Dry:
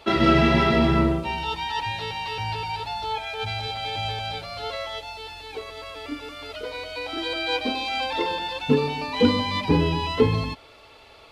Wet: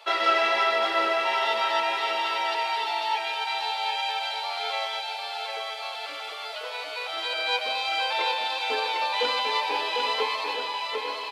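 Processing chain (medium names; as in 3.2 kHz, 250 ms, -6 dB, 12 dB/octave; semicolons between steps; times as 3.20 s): high-pass 590 Hz 24 dB/octave; on a send: bouncing-ball echo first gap 750 ms, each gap 0.8×, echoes 5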